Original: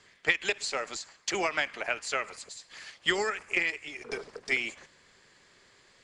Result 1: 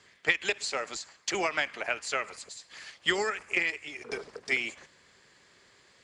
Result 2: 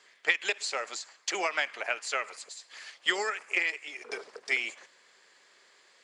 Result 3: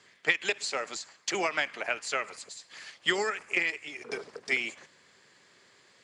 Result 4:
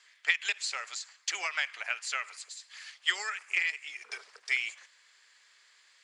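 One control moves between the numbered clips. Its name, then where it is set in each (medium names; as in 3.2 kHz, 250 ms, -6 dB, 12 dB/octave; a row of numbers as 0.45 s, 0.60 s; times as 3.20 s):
high-pass, cutoff frequency: 41 Hz, 440 Hz, 120 Hz, 1.4 kHz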